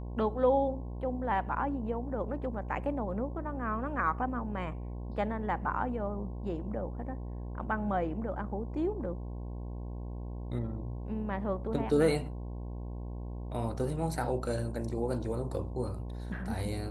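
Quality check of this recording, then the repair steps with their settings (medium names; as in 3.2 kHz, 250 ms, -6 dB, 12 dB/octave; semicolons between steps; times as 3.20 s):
buzz 60 Hz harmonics 18 -39 dBFS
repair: de-hum 60 Hz, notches 18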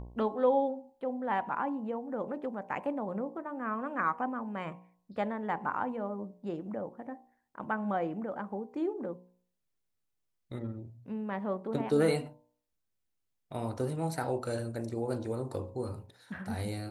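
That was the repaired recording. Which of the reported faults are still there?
nothing left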